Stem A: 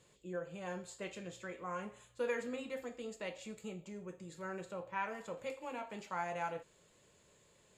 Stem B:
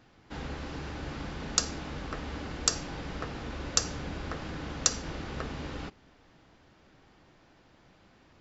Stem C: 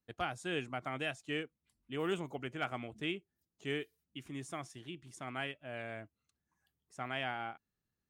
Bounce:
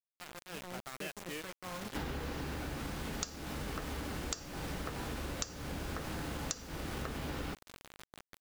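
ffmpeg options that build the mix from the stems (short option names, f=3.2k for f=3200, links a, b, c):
-filter_complex "[0:a]lowshelf=f=460:g=8.5,volume=-14dB[a];[1:a]adelay=1650,volume=1.5dB[b];[2:a]volume=-14dB[c];[a][b][c]amix=inputs=3:normalize=0,dynaudnorm=f=190:g=7:m=8dB,acrusher=bits=6:mix=0:aa=0.000001,acompressor=threshold=-36dB:ratio=8"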